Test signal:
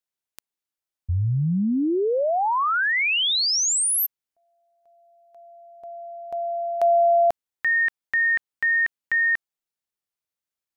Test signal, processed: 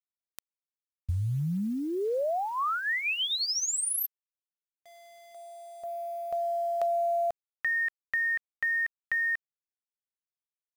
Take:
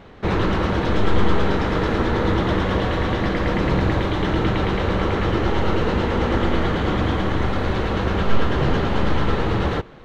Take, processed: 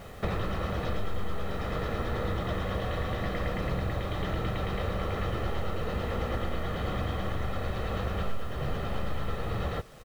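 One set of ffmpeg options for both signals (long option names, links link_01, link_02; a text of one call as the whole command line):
ffmpeg -i in.wav -af "aecho=1:1:1.6:0.48,acompressor=threshold=-27dB:ratio=4:attack=24:release=602:knee=6:detection=rms,acrusher=bits=8:mix=0:aa=0.000001,volume=-1.5dB" out.wav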